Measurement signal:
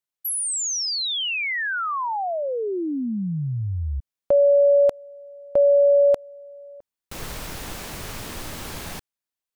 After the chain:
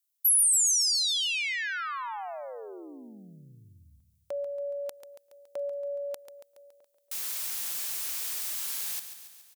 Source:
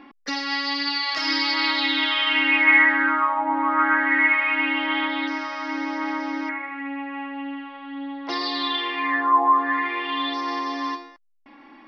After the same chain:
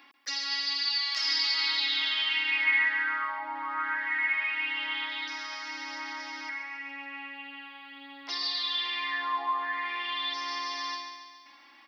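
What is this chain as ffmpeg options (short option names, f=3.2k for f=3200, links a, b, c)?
-filter_complex "[0:a]aderivative,asplit=2[a][b];[b]acompressor=threshold=-41dB:ratio=6:attack=0.29:release=106:detection=peak,volume=3dB[c];[a][c]amix=inputs=2:normalize=0,aecho=1:1:140|280|420|560|700|840|980:0.299|0.176|0.104|0.0613|0.0362|0.0213|0.0126"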